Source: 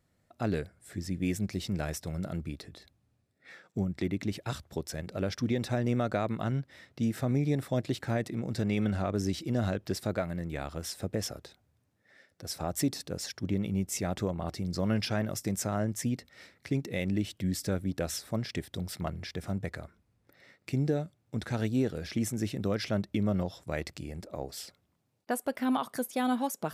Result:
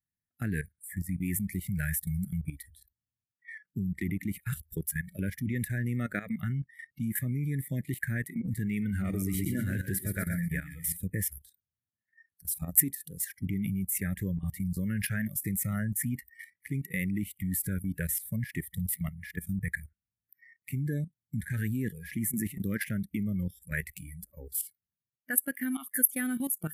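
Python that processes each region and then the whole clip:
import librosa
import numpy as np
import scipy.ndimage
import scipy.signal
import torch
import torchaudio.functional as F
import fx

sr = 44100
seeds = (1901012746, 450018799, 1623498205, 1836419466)

y = fx.chain(x, sr, fx.hum_notches(base_hz=60, count=4),
    fx.echo_feedback(ms=121, feedback_pct=55, wet_db=-5), at=(8.89, 10.97))
y = fx.noise_reduce_blind(y, sr, reduce_db=28)
y = fx.curve_eq(y, sr, hz=(200.0, 1000.0, 1700.0, 3400.0, 5300.0, 11000.0), db=(0, -26, 6, -14, -19, 13))
y = fx.level_steps(y, sr, step_db=13)
y = y * 10.0 ** (8.5 / 20.0)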